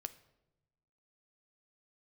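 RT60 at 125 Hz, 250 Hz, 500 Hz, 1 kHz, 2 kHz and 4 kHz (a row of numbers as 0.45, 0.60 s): 1.5, 1.3, 1.1, 0.85, 0.70, 0.60 s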